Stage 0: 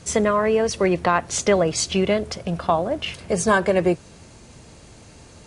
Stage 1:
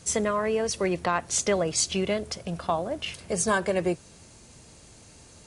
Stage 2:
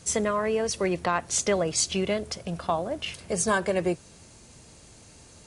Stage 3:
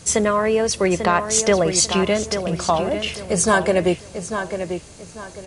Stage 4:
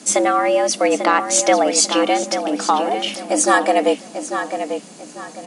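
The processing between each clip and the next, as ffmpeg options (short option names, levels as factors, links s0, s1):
-af "highshelf=f=5300:g=10,volume=0.447"
-af anull
-filter_complex "[0:a]asplit=2[s0][s1];[s1]adelay=844,lowpass=f=4000:p=1,volume=0.398,asplit=2[s2][s3];[s3]adelay=844,lowpass=f=4000:p=1,volume=0.31,asplit=2[s4][s5];[s5]adelay=844,lowpass=f=4000:p=1,volume=0.31,asplit=2[s6][s7];[s7]adelay=844,lowpass=f=4000:p=1,volume=0.31[s8];[s0][s2][s4][s6][s8]amix=inputs=5:normalize=0,volume=2.37"
-af "afreqshift=130,volume=1.26"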